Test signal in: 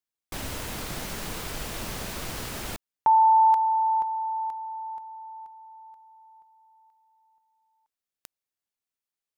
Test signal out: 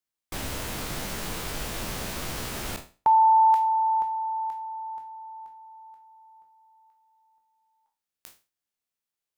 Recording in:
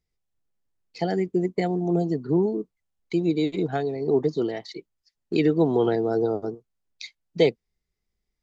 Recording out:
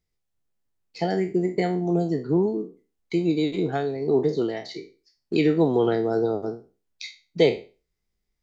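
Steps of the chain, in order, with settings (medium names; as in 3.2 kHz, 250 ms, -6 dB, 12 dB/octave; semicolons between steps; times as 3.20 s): spectral sustain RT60 0.33 s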